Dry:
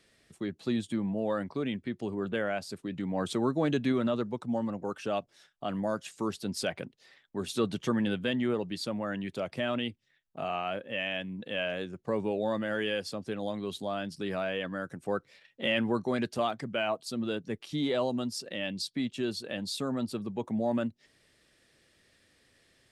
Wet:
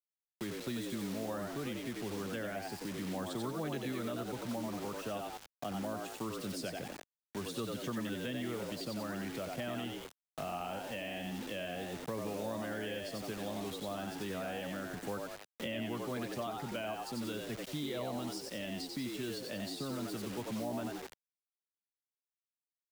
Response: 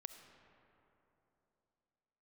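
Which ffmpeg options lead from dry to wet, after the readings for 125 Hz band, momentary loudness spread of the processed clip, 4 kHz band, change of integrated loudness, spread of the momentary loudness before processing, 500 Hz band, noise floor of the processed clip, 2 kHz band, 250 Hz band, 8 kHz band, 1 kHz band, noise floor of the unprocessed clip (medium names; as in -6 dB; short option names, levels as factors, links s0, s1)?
-5.0 dB, 3 LU, -6.5 dB, -7.0 dB, 7 LU, -7.5 dB, under -85 dBFS, -7.5 dB, -7.5 dB, -1.0 dB, -5.5 dB, -69 dBFS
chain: -filter_complex "[0:a]asplit=6[s0][s1][s2][s3][s4][s5];[s1]adelay=90,afreqshift=75,volume=0.631[s6];[s2]adelay=180,afreqshift=150,volume=0.245[s7];[s3]adelay=270,afreqshift=225,volume=0.0955[s8];[s4]adelay=360,afreqshift=300,volume=0.0376[s9];[s5]adelay=450,afreqshift=375,volume=0.0146[s10];[s0][s6][s7][s8][s9][s10]amix=inputs=6:normalize=0,acrusher=bits=6:mix=0:aa=0.000001,acrossover=split=170|730[s11][s12][s13];[s11]acompressor=threshold=0.00708:ratio=4[s14];[s12]acompressor=threshold=0.00891:ratio=4[s15];[s13]acompressor=threshold=0.00708:ratio=4[s16];[s14][s15][s16]amix=inputs=3:normalize=0,volume=0.891"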